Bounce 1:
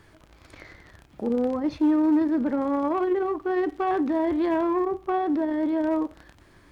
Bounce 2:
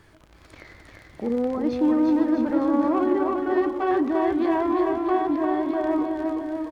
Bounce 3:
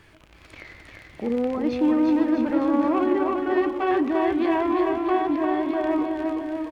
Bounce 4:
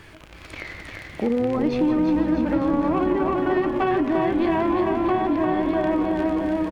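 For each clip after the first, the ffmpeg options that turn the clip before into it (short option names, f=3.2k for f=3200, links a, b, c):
-af "aecho=1:1:350|647.5|900.4|1115|1298:0.631|0.398|0.251|0.158|0.1"
-af "equalizer=f=2.6k:t=o:w=0.75:g=8"
-filter_complex "[0:a]acompressor=threshold=-27dB:ratio=4,asplit=7[a][b][c][d][e][f][g];[b]adelay=172,afreqshift=-120,volume=-13dB[h];[c]adelay=344,afreqshift=-240,volume=-18.4dB[i];[d]adelay=516,afreqshift=-360,volume=-23.7dB[j];[e]adelay=688,afreqshift=-480,volume=-29.1dB[k];[f]adelay=860,afreqshift=-600,volume=-34.4dB[l];[g]adelay=1032,afreqshift=-720,volume=-39.8dB[m];[a][h][i][j][k][l][m]amix=inputs=7:normalize=0,volume=7.5dB"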